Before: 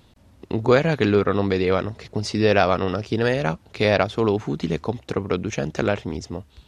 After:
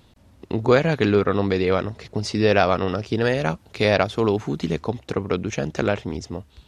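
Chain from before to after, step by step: 3.36–4.73 high shelf 7800 Hz +6 dB

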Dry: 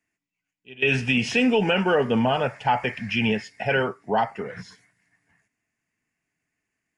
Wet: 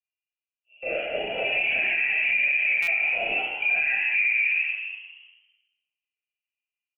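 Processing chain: bin magnitudes rounded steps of 15 dB; low-pass opened by the level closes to 340 Hz, open at -18 dBFS; overdrive pedal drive 15 dB, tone 1000 Hz, clips at -11 dBFS; vowel filter a; on a send: frequency-shifting echo 0.163 s, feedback 47%, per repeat -76 Hz, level -7 dB; on the sum: reverb RT60 0.90 s, pre-delay 27 ms, DRR -9.5 dB; in parallel at -1.5 dB: compressor, threshold -27 dBFS, peak gain reduction 13.5 dB; on the sum: dynamic EQ 870 Hz, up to +5 dB, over -28 dBFS, Q 0.8; inverted band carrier 3100 Hz; limiter -12 dBFS, peak gain reduction 11 dB; stuck buffer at 2.82, samples 256, times 8; gain -4 dB

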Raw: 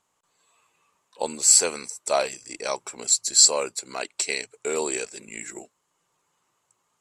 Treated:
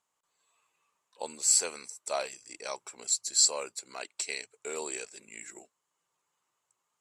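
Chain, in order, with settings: low shelf 400 Hz -7 dB; gain -8 dB

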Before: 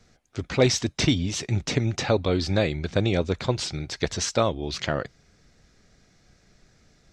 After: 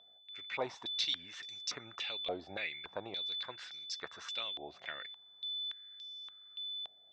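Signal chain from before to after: 2.83–3.47 high shelf 4100 Hz -5.5 dB; whine 3500 Hz -31 dBFS; stepped band-pass 3.5 Hz 700–5200 Hz; gain -2.5 dB

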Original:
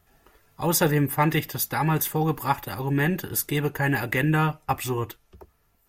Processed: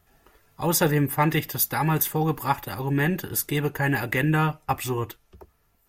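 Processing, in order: 1.49–2.03 high shelf 9600 Hz +6 dB

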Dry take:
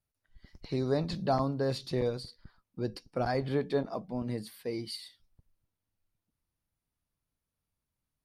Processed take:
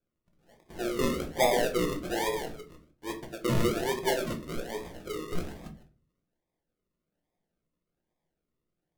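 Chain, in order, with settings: reverse delay 0.141 s, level -6.5 dB; HPF 430 Hz 24 dB/oct; decimation with a swept rate 40×, swing 60% 1.3 Hz; reverb RT60 0.35 s, pre-delay 5 ms, DRR 3 dB; speed mistake 48 kHz file played as 44.1 kHz; gain +3 dB

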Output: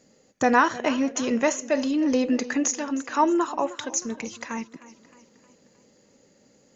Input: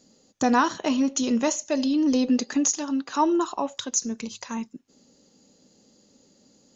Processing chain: ten-band EQ 125 Hz +4 dB, 250 Hz -3 dB, 500 Hz +5 dB, 2000 Hz +10 dB, 4000 Hz -6 dB; warbling echo 0.309 s, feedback 49%, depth 69 cents, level -17.5 dB; gain -1 dB

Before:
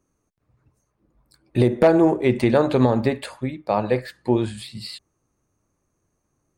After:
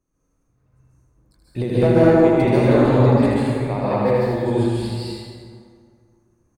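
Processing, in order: low shelf 83 Hz +10 dB; echo 79 ms -4.5 dB; plate-style reverb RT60 2.1 s, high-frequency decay 0.55×, pre-delay 0.12 s, DRR -9 dB; gain -8.5 dB

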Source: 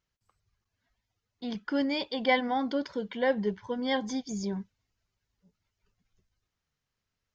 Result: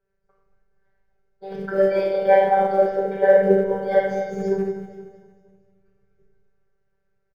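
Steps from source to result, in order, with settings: low shelf 73 Hz -9 dB; reverb RT60 1.1 s, pre-delay 3 ms, DRR -5 dB; in parallel at -7.5 dB: short-mantissa float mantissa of 2-bit; on the sum: robotiser 194 Hz; EQ curve 120 Hz 0 dB, 280 Hz -27 dB, 430 Hz +12 dB, 970 Hz -11 dB, 1600 Hz 0 dB, 3500 Hz -20 dB; on a send: feedback echo 0.233 s, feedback 47%, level -13.5 dB

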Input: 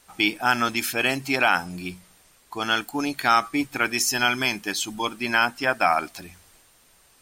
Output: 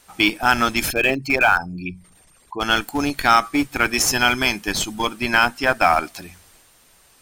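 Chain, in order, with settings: 0.88–2.61 formant sharpening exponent 2; in parallel at -9 dB: Schmitt trigger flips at -20.5 dBFS; on the sum: gain +3.5 dB

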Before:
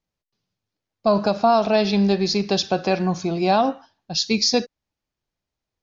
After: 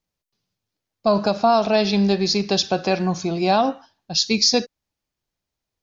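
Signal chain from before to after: high shelf 4300 Hz +5 dB

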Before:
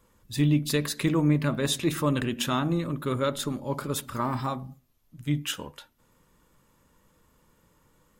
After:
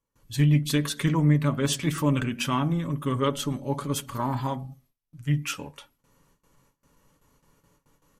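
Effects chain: gate with hold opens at -53 dBFS; comb 7.1 ms, depth 37%; formant shift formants -2 st

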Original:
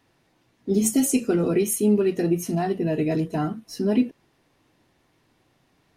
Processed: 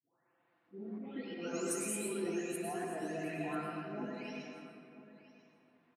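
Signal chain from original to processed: spectral delay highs late, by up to 0.842 s; auto swell 0.21 s; HPF 370 Hz 6 dB/oct; low shelf 490 Hz -12 dB; low-pass opened by the level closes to 1600 Hz, open at -20.5 dBFS; compressor 2:1, threshold -39 dBFS, peak gain reduction 7.5 dB; echo 0.991 s -18 dB; reverb RT60 2.4 s, pre-delay 97 ms, DRR -1.5 dB; gain -2 dB; Vorbis 64 kbps 44100 Hz

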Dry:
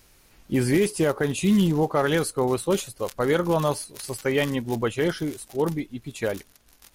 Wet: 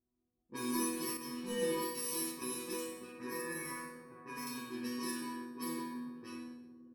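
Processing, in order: FFT order left unsorted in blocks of 64 samples; HPF 100 Hz; on a send at -5.5 dB: reverb RT60 5.0 s, pre-delay 49 ms; on the sum: low-pass opened by the level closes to 300 Hz, open at -18 dBFS; in parallel at -8 dB: one-sided clip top -18.5 dBFS; on the sum: resonator bank B3 sus4, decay 0.68 s; 3.12–4.47 resonant high shelf 2500 Hz -6.5 dB, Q 3; feedback echo 61 ms, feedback 59%, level -8 dB; 1.17–2.42 three-band expander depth 70%; gain +5 dB

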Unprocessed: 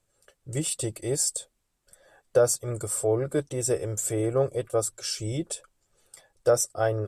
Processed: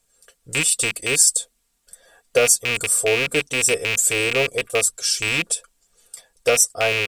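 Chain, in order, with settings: rattling part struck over -32 dBFS, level -15 dBFS; high shelf 2300 Hz +10 dB; comb 4.3 ms, depth 52%; gain +1 dB

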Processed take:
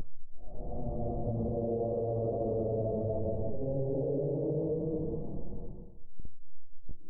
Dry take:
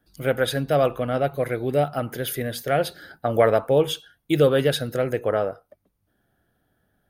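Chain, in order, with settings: level-crossing sampler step -22 dBFS; Paulstretch 6.3×, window 0.25 s, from 3.08; in parallel at -10 dB: wrapped overs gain 26.5 dB; on the sum: Gaussian blur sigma 17 samples; limiter -24.5 dBFS, peak gain reduction 11.5 dB; de-hum 117.7 Hz, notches 12

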